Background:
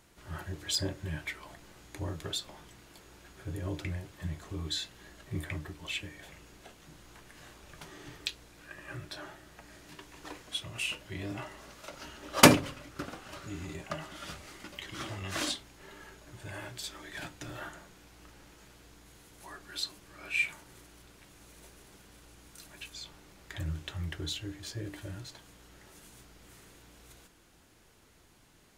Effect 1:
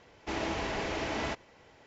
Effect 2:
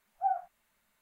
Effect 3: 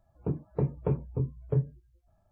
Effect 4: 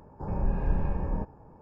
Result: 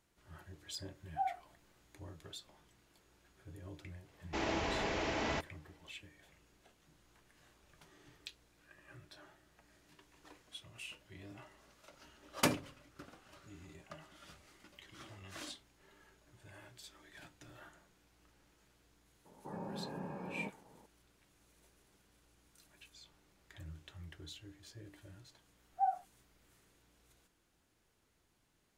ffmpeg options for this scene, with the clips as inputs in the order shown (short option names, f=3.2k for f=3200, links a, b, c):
-filter_complex "[2:a]asplit=2[a][b];[0:a]volume=-14dB[c];[1:a]agate=range=-33dB:threshold=-53dB:ratio=3:release=100:detection=peak[d];[4:a]highpass=f=170:w=0.5412,highpass=f=170:w=1.3066[e];[b]aecho=1:1:5.2:0.65[f];[a]atrim=end=1.01,asetpts=PTS-STARTPTS,volume=-6.5dB,afade=t=in:d=0.004:c=hsin,afade=t=out:st=1.006:d=0.004:c=hsin,adelay=950[g];[d]atrim=end=1.86,asetpts=PTS-STARTPTS,volume=-2.5dB,afade=t=in:d=0.004:c=hsin,afade=t=out:st=1.856:d=0.004:c=hsin,adelay=4060[h];[e]atrim=end=1.61,asetpts=PTS-STARTPTS,volume=-7.5dB,afade=t=in:d=0.004:c=hsin,afade=t=out:st=1.606:d=0.004:c=hsin,adelay=19250[i];[f]atrim=end=1.01,asetpts=PTS-STARTPTS,volume=-7dB,afade=t=in:d=0.004:c=hsin,afade=t=out:st=1.006:d=0.004:c=hsin,adelay=25570[j];[c][g][h][i][j]amix=inputs=5:normalize=0"